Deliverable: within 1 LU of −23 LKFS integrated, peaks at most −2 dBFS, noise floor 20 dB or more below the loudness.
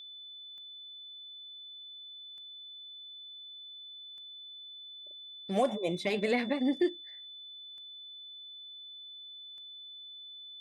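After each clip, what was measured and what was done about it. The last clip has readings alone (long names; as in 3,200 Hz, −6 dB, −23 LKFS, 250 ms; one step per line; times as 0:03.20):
number of clicks 6; interfering tone 3,500 Hz; level of the tone −45 dBFS; integrated loudness −38.0 LKFS; sample peak −17.0 dBFS; target loudness −23.0 LKFS
→ click removal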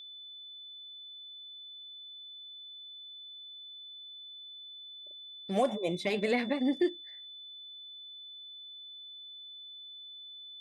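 number of clicks 0; interfering tone 3,500 Hz; level of the tone −45 dBFS
→ notch filter 3,500 Hz, Q 30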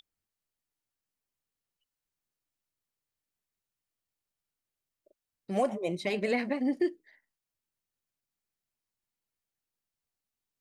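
interfering tone none found; integrated loudness −31.0 LKFS; sample peak −17.0 dBFS; target loudness −23.0 LKFS
→ level +8 dB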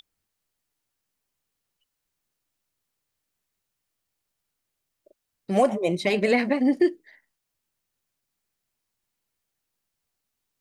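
integrated loudness −23.0 LKFS; sample peak −9.0 dBFS; background noise floor −82 dBFS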